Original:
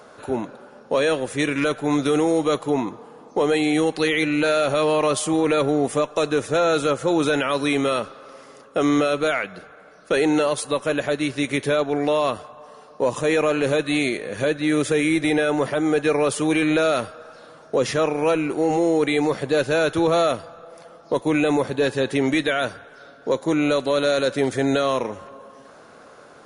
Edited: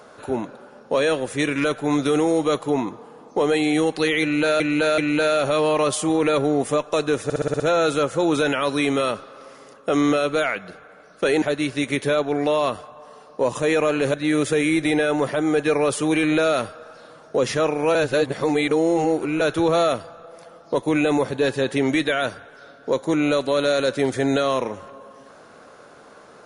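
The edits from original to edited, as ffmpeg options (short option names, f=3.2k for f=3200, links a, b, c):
-filter_complex "[0:a]asplit=13[a][b][c][d][e][f][g][h][i][j][k][l][m];[a]atrim=end=4.602[n];[b]atrim=start=4.218:end=4.602[o];[c]atrim=start=4.218:end=6.542[p];[d]atrim=start=6.478:end=6.542[q];[e]atrim=start=6.478:end=6.542[r];[f]atrim=start=6.478:end=6.542[s];[g]atrim=start=6.478:end=6.542[t];[h]atrim=start=6.478:end=6.542[u];[i]atrim=start=6.478:end=10.302[v];[j]atrim=start=11.028:end=13.752[w];[k]atrim=start=14.528:end=18.342[x];[l]atrim=start=18.338:end=19.802,asetpts=PTS-STARTPTS,areverse[y];[m]atrim=start=19.798[z];[n][o]acrossfade=d=0.004:c1=hsin:c2=hsin[aa];[aa][p]acrossfade=d=0.004:c1=hsin:c2=hsin[ab];[ab][q]acrossfade=d=0.004:c1=hsin:c2=hsin[ac];[ac][r]acrossfade=d=0.004:c1=hsin:c2=hsin[ad];[ad][s]acrossfade=d=0.004:c1=hsin:c2=hsin[ae];[ae][t]acrossfade=d=0.004:c1=hsin:c2=hsin[af];[af][u]acrossfade=d=0.004:c1=hsin:c2=hsin[ag];[ag][v]acrossfade=d=0.004:c1=hsin:c2=hsin[ah];[ah][w]acrossfade=d=0.004:c1=hsin:c2=hsin[ai];[ai][x]acrossfade=d=0.004:c1=hsin:c2=hsin[aj];[aj][y]acrossfade=d=0.004:c1=hsin:c2=hsin[ak];[ak][z]acrossfade=d=0.004:c1=hsin:c2=hsin"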